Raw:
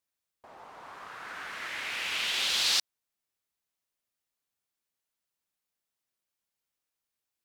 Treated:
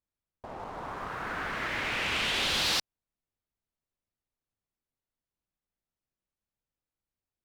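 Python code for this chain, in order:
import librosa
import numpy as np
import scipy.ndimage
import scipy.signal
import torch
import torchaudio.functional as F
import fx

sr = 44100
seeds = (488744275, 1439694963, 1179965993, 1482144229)

y = fx.tilt_eq(x, sr, slope=-3.5)
y = fx.leveller(y, sr, passes=2)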